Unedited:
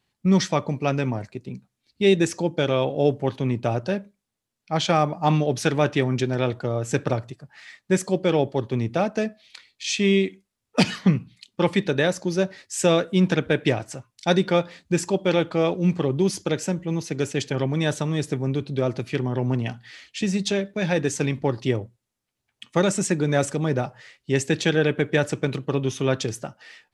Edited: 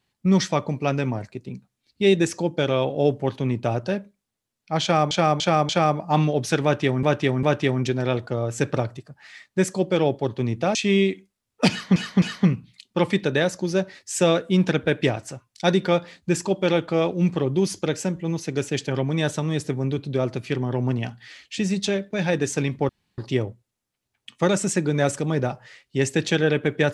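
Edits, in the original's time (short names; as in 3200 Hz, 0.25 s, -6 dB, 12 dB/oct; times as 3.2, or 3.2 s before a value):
4.82–5.11 loop, 4 plays
5.76–6.16 loop, 3 plays
9.08–9.9 cut
10.85–11.11 loop, 3 plays
21.52 insert room tone 0.29 s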